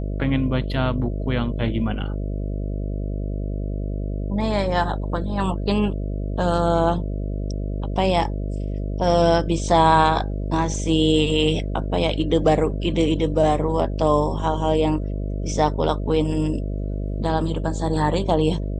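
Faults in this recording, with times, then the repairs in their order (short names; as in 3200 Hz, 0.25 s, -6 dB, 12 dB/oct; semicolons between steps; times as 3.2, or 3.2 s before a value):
buzz 50 Hz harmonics 13 -26 dBFS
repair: de-hum 50 Hz, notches 13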